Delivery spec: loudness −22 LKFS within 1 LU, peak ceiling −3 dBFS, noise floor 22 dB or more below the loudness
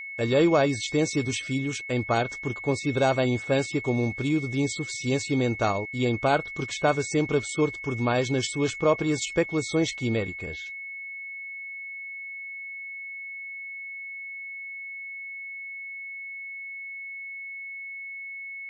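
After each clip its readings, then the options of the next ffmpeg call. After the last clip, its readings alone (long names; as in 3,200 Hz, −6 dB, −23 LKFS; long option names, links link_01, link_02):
interfering tone 2,200 Hz; level of the tone −35 dBFS; integrated loudness −28.0 LKFS; sample peak −9.0 dBFS; target loudness −22.0 LKFS
→ -af "bandreject=frequency=2200:width=30"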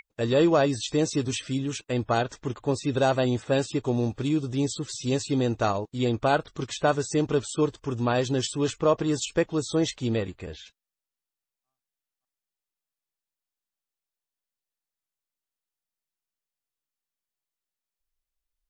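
interfering tone none found; integrated loudness −26.5 LKFS; sample peak −9.0 dBFS; target loudness −22.0 LKFS
→ -af "volume=4.5dB"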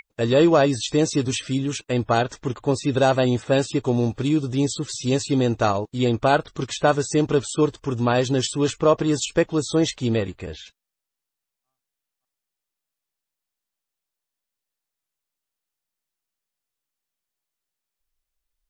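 integrated loudness −22.0 LKFS; sample peak −4.5 dBFS; background noise floor −85 dBFS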